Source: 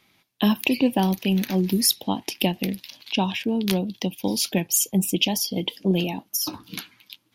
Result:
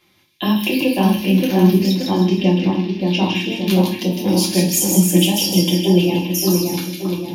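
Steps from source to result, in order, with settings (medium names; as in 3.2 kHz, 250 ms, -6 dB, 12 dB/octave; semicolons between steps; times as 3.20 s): in parallel at -2.5 dB: peak limiter -13.5 dBFS, peak gain reduction 10 dB; 1.78–2.99 s: on the sum: distance through air 180 m; two-band feedback delay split 2.2 kHz, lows 576 ms, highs 156 ms, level -3.5 dB; reverberation RT60 0.45 s, pre-delay 3 ms, DRR -4 dB; trim -6 dB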